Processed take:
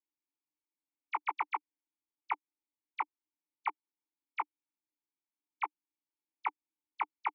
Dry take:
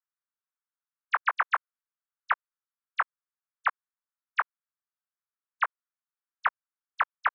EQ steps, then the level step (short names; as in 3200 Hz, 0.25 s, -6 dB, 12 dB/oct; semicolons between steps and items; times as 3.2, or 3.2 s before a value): vowel filter u; bell 350 Hz +12.5 dB 1.8 oct; high shelf 2900 Hz +11.5 dB; +4.0 dB